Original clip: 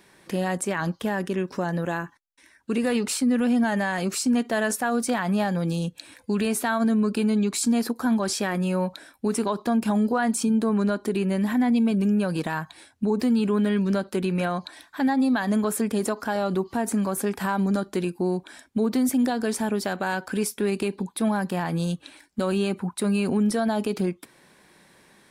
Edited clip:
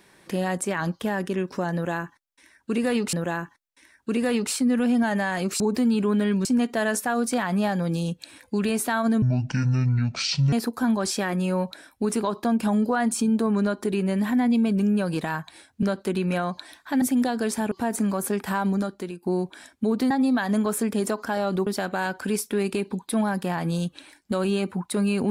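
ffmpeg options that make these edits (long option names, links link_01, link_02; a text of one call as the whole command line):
ffmpeg -i in.wav -filter_complex "[0:a]asplit=12[link_01][link_02][link_03][link_04][link_05][link_06][link_07][link_08][link_09][link_10][link_11][link_12];[link_01]atrim=end=3.132[link_13];[link_02]atrim=start=1.738:end=4.212[link_14];[link_03]atrim=start=13.048:end=13.902[link_15];[link_04]atrim=start=4.208:end=6.984[link_16];[link_05]atrim=start=6.98:end=7.75,asetpts=PTS-STARTPTS,asetrate=26019,aresample=44100,atrim=end_sample=57554,asetpts=PTS-STARTPTS[link_17];[link_06]atrim=start=7.746:end=13.052[link_18];[link_07]atrim=start=13.898:end=15.092[link_19];[link_08]atrim=start=19.038:end=19.742[link_20];[link_09]atrim=start=16.648:end=18.16,asetpts=PTS-STARTPTS,afade=type=out:start_time=0.962:duration=0.55:silence=0.223872[link_21];[link_10]atrim=start=18.16:end=19.042,asetpts=PTS-STARTPTS,afade=type=in:duration=0.004:curve=hsin:silence=0.223872[link_22];[link_11]atrim=start=15.088:end=16.652[link_23];[link_12]atrim=start=19.738[link_24];[link_13][link_14]acrossfade=duration=0.004:curve1=hsin:curve2=hsin[link_25];[link_25][link_15]acrossfade=duration=0.004:curve1=hsin:curve2=hsin[link_26];[link_26][link_16]acrossfade=duration=0.004:curve1=hsin:curve2=hsin[link_27];[link_27][link_17]acrossfade=duration=0.004:curve1=hsin:curve2=hsin[link_28];[link_28][link_18]acrossfade=duration=0.004:curve1=hsin:curve2=hsin[link_29];[link_29][link_19]acrossfade=duration=0.004:curve1=hsin:curve2=hsin[link_30];[link_30][link_20]acrossfade=duration=0.004:curve1=hsin:curve2=hsin[link_31];[link_21][link_22]concat=n=2:v=0:a=1[link_32];[link_31][link_32]acrossfade=duration=0.004:curve1=hsin:curve2=hsin[link_33];[link_33][link_23]acrossfade=duration=0.004:curve1=hsin:curve2=hsin[link_34];[link_34][link_24]acrossfade=duration=0.004:curve1=hsin:curve2=hsin" out.wav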